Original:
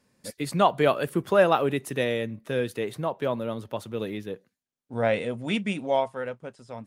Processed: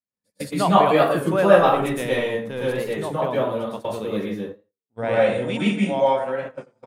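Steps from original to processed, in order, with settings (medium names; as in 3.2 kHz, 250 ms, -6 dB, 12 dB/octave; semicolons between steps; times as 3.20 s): 1.57–2.66 s: partial rectifier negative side -3 dB; plate-style reverb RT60 0.53 s, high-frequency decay 0.55×, pre-delay 100 ms, DRR -7 dB; gate -29 dBFS, range -32 dB; on a send: feedback delay 87 ms, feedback 18%, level -21.5 dB; on the sum: warped record 33 1/3 rpm, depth 100 cents; trim -2.5 dB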